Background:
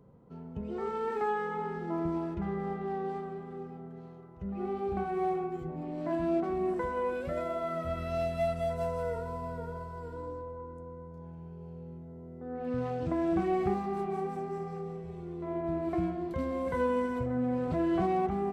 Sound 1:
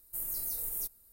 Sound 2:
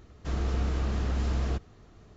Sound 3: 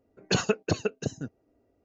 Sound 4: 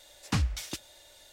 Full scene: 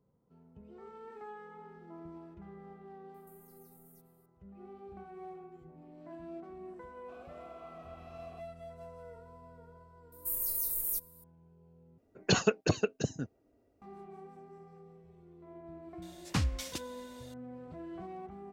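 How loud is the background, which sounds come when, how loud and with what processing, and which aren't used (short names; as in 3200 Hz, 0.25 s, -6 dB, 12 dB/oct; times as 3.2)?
background -16 dB
3.14 add 1 -14 dB + compressor 12:1, threshold -45 dBFS
6.83 add 2 -6 dB + vowel filter a
10.12 add 1 -3 dB + high shelf 7600 Hz +6.5 dB
11.98 replace with 3 -1.5 dB
16.02 add 4 -3 dB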